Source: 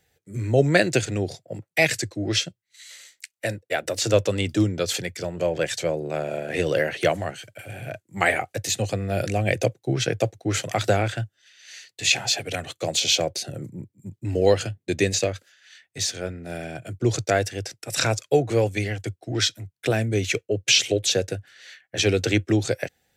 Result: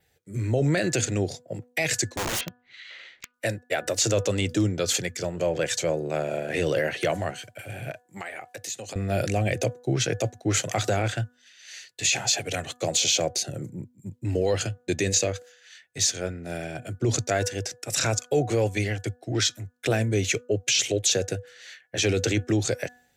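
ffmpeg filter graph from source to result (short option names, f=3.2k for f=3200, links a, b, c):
-filter_complex "[0:a]asettb=1/sr,asplit=3[a][b][c];[a]atrim=end=2.164[d];[b]atrim=start=2.16:end=3.34,asetpts=PTS-STARTPTS,afade=t=in:d=0.004:c=qsin,afade=t=out:st=1.176:d=0.004:c=qsin,lowpass=f=3.2k:w=0.5412,lowpass=f=3.2k:w=1.3066,acompressor=mode=upward:threshold=-35dB:ratio=2.5:attack=3.2:release=140:knee=2.83:detection=peak,aeval=exprs='(mod(15*val(0)+1,2)-1)/15':c=same[e];[c]atrim=start=3.336[f];[d][e]acrossfade=d=0.004:c1=hsin:c2=qsin[g];[g][f]acrossfade=d=0.004:c1=qsin:c2=hsin,asettb=1/sr,asplit=3[h][i][j];[h]atrim=end=7.914[k];[i]atrim=start=7.91:end=8.96,asetpts=PTS-STARTPTS,afade=t=in:d=0.004:c=qsin,afade=t=out:st=1.046:d=0.004:c=qsin,highpass=f=360:p=1,acompressor=threshold=-34dB:ratio=5:attack=3.2:release=140:knee=1:detection=peak[l];[j]atrim=start=8.956[m];[k][l]acrossfade=d=0.004:c1=hsin:c2=qsin[n];[n][m]acrossfade=d=0.004:c1=qsin:c2=hsin,bandreject=f=245.7:t=h:w=4,bandreject=f=491.4:t=h:w=4,bandreject=f=737.1:t=h:w=4,bandreject=f=982.8:t=h:w=4,bandreject=f=1.2285k:t=h:w=4,bandreject=f=1.4742k:t=h:w=4,bandreject=f=1.7199k:t=h:w=4,alimiter=limit=-14.5dB:level=0:latency=1:release=17,adynamicequalizer=threshold=0.00501:dfrequency=6700:dqfactor=3.3:tfrequency=6700:tqfactor=3.3:attack=5:release=100:ratio=0.375:range=3.5:mode=boostabove:tftype=bell"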